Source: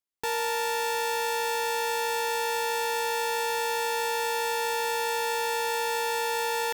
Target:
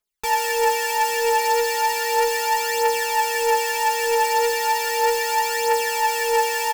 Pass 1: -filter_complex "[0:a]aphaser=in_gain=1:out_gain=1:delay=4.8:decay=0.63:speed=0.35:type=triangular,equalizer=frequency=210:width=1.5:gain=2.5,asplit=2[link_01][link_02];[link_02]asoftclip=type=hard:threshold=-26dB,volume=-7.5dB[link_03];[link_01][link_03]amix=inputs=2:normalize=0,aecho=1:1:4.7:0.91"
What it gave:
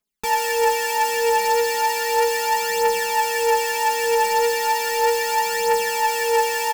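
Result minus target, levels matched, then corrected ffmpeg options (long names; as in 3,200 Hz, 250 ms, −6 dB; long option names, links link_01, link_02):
250 Hz band +6.0 dB
-filter_complex "[0:a]aphaser=in_gain=1:out_gain=1:delay=4.8:decay=0.63:speed=0.35:type=triangular,equalizer=frequency=210:width=1.5:gain=-9,asplit=2[link_01][link_02];[link_02]asoftclip=type=hard:threshold=-26dB,volume=-7.5dB[link_03];[link_01][link_03]amix=inputs=2:normalize=0,aecho=1:1:4.7:0.91"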